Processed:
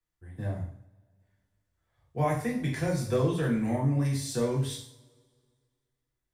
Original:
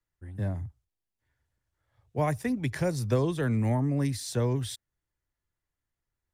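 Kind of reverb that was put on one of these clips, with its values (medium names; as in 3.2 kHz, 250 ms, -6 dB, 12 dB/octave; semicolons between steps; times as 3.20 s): two-slope reverb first 0.53 s, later 2 s, from -24 dB, DRR -3.5 dB; trim -5 dB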